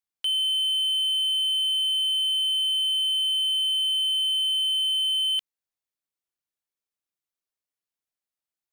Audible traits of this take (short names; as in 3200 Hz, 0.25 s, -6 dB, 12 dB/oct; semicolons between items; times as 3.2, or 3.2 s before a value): noise floor -92 dBFS; spectral tilt +5.0 dB/oct